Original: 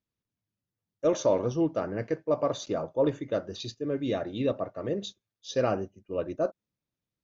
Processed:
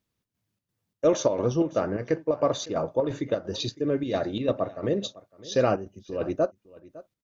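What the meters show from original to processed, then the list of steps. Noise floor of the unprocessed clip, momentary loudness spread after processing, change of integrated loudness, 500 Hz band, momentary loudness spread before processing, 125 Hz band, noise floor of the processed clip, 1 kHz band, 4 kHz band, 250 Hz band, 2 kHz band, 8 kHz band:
below −85 dBFS, 7 LU, +3.0 dB, +2.5 dB, 8 LU, +3.5 dB, −84 dBFS, +3.0 dB, +5.0 dB, +2.5 dB, +3.5 dB, can't be measured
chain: square-wave tremolo 2.9 Hz, depth 60%, duty 70%
in parallel at +0.5 dB: downward compressor, threshold −36 dBFS, peak gain reduction 15.5 dB
on the sum: single-tap delay 557 ms −20 dB
level +2 dB

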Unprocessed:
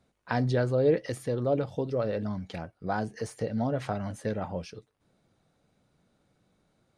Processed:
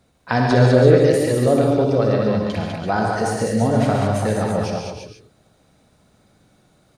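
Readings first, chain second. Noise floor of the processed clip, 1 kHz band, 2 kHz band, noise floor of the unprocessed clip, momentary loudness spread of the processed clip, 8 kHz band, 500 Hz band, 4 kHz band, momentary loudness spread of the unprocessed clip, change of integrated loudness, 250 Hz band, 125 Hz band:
−60 dBFS, +13.0 dB, +13.0 dB, −73 dBFS, 12 LU, +16.0 dB, +12.0 dB, +14.5 dB, 12 LU, +12.5 dB, +13.0 dB, +13.0 dB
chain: high-shelf EQ 5,400 Hz +4.5 dB
on a send: multi-tap delay 61/200/337 ms −8/−4/−9 dB
on the sum: reverb whose tail is shaped and stops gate 170 ms rising, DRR 2.5 dB
level +8.5 dB

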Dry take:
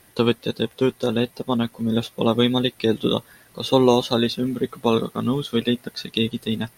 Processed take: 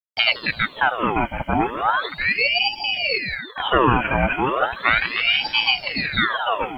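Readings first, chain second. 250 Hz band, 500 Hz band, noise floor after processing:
−7.5 dB, −5.0 dB, −41 dBFS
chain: hearing-aid frequency compression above 1,600 Hz 4 to 1
high-pass filter 71 Hz 24 dB per octave
noise gate −40 dBFS, range −31 dB
in parallel at +0.5 dB: brickwall limiter −13.5 dBFS, peak gain reduction 11 dB
on the sum: bit reduction 10 bits
gain on a spectral selection 0:01.91–0:03.44, 290–1,900 Hz −22 dB
on a send: echo with a time of its own for lows and highs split 670 Hz, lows 720 ms, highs 166 ms, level −8 dB
on the sum: ring modulator whose carrier an LFO sweeps 1,600 Hz, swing 75%, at 0.36 Hz
level −1.5 dB

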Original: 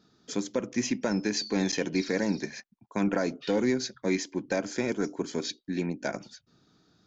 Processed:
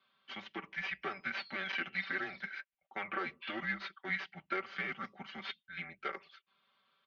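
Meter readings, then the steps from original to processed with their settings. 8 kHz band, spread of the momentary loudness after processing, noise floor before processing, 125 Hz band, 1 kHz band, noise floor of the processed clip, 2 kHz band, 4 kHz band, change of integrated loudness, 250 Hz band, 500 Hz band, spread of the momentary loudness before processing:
can't be measured, 9 LU, −70 dBFS, −17.0 dB, −3.0 dB, below −85 dBFS, +0.5 dB, −8.5 dB, −9.5 dB, −20.0 dB, −17.5 dB, 7 LU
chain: stylus tracing distortion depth 0.11 ms
comb filter 5.2 ms, depth 93%
single-sideband voice off tune −190 Hz 330–3,000 Hz
first difference
level +10.5 dB

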